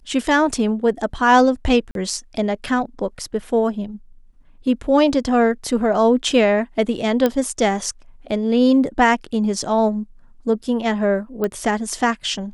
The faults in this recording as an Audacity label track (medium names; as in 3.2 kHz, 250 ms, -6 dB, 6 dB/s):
1.910000	1.950000	dropout 42 ms
7.260000	7.260000	pop -6 dBFS
11.440000	11.440000	pop -11 dBFS